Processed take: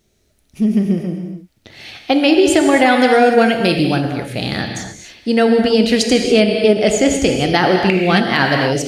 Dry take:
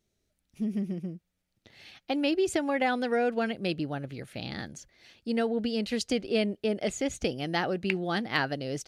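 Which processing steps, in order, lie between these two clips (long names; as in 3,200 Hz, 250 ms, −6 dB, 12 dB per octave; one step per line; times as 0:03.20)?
0:02.70–0:03.97: high-shelf EQ 7,600 Hz +10.5 dB
reverb whose tail is shaped and stops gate 310 ms flat, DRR 3.5 dB
boost into a limiter +16 dB
level −1 dB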